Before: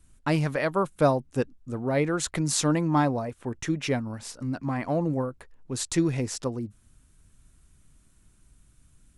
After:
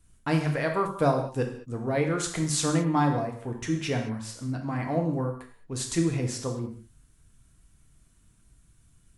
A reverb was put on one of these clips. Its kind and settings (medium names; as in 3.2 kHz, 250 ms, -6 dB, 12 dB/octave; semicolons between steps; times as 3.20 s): gated-style reverb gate 240 ms falling, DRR 2 dB; trim -3 dB